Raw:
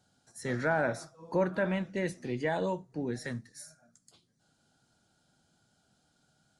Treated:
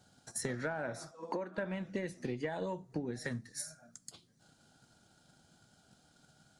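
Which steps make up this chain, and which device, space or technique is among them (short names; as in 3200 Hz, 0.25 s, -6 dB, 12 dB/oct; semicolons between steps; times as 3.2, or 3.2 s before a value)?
drum-bus smash (transient shaper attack +8 dB, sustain 0 dB; compressor 8:1, threshold -38 dBFS, peak gain reduction 19.5 dB; soft clip -28 dBFS, distortion -23 dB); 1.11–1.58 elliptic band-pass 220–8800 Hz; gain +4.5 dB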